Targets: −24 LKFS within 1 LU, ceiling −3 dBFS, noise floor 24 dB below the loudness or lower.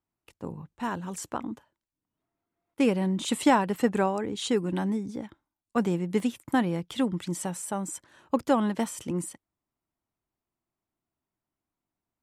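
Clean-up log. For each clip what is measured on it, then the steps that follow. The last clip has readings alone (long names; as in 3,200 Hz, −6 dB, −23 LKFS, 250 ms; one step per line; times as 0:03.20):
number of dropouts 1; longest dropout 1.8 ms; integrated loudness −28.5 LKFS; sample peak −10.0 dBFS; target loudness −24.0 LKFS
→ repair the gap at 0:06.20, 1.8 ms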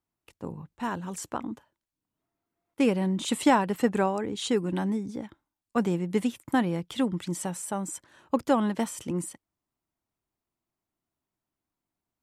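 number of dropouts 0; integrated loudness −28.5 LKFS; sample peak −10.0 dBFS; target loudness −24.0 LKFS
→ level +4.5 dB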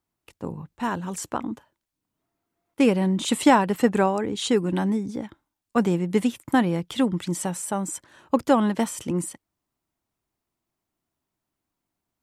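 integrated loudness −24.0 LKFS; sample peak −5.5 dBFS; background noise floor −84 dBFS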